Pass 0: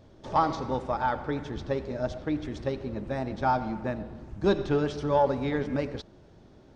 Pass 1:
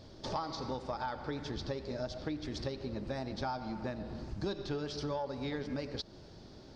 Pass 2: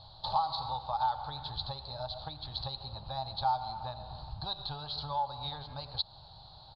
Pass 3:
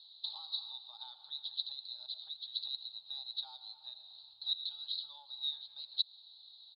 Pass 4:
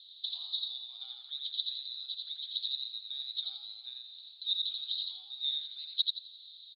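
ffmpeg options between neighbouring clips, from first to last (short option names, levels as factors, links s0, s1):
-af "equalizer=f=4700:w=1.9:g=14,acompressor=threshold=0.0158:ratio=6,volume=1.12"
-af "firequalizer=gain_entry='entry(140,0);entry(220,-20);entry(370,-21);entry(800,11);entry(2000,-16);entry(4100,15);entry(5800,-26)':delay=0.05:min_phase=1"
-af "bandpass=f=3800:t=q:w=11:csg=0,volume=1.78"
-filter_complex "[0:a]highpass=f=2100:t=q:w=3.1,asplit=5[s0][s1][s2][s3][s4];[s1]adelay=86,afreqshift=48,volume=0.708[s5];[s2]adelay=172,afreqshift=96,volume=0.211[s6];[s3]adelay=258,afreqshift=144,volume=0.0638[s7];[s4]adelay=344,afreqshift=192,volume=0.0191[s8];[s0][s5][s6][s7][s8]amix=inputs=5:normalize=0,afreqshift=-110"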